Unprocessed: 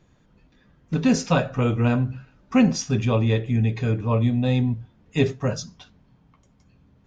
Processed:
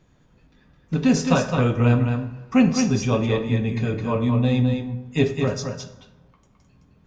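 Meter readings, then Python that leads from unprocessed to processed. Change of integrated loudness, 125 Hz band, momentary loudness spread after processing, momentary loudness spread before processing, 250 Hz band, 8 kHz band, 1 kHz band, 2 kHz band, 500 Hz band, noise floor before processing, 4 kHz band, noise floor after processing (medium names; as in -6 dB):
+1.0 dB, +0.5 dB, 9 LU, 10 LU, +1.5 dB, no reading, +1.5 dB, +1.5 dB, +2.0 dB, -60 dBFS, +1.5 dB, -59 dBFS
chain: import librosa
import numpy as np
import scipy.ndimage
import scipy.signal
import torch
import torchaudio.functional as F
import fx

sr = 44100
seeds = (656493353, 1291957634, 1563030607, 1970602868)

p1 = x + fx.echo_single(x, sr, ms=213, db=-5.5, dry=0)
y = fx.rev_plate(p1, sr, seeds[0], rt60_s=1.1, hf_ratio=0.55, predelay_ms=0, drr_db=9.5)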